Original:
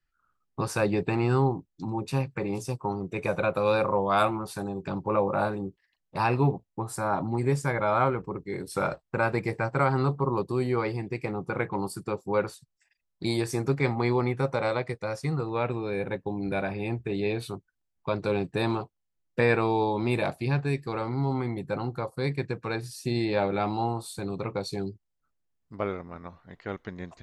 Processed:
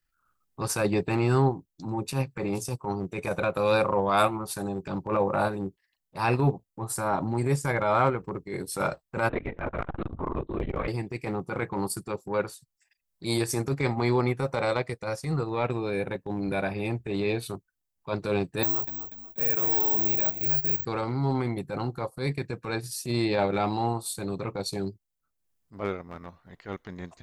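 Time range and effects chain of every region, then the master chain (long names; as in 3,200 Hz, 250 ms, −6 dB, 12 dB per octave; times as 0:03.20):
0:09.29–0:10.88: linear-prediction vocoder at 8 kHz whisper + saturating transformer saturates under 320 Hz
0:18.63–0:20.85: downward compressor, threshold −34 dBFS + echo with shifted repeats 242 ms, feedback 40%, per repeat −43 Hz, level −9 dB + bad sample-rate conversion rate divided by 2×, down filtered, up zero stuff
whole clip: high-shelf EQ 6,800 Hz +10.5 dB; transient designer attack −10 dB, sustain −6 dB; level +2.5 dB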